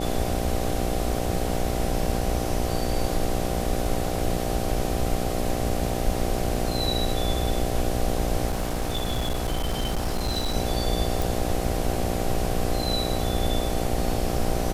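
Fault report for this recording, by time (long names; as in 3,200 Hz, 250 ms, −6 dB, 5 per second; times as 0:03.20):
mains buzz 60 Hz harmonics 13 −29 dBFS
0:08.48–0:10.55: clipping −21.5 dBFS
0:11.22: click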